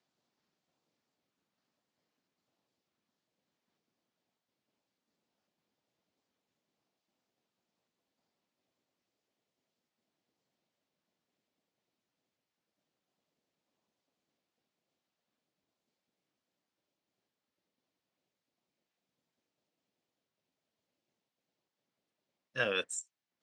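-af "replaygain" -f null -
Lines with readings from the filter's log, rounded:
track_gain = +64.0 dB
track_peak = 0.098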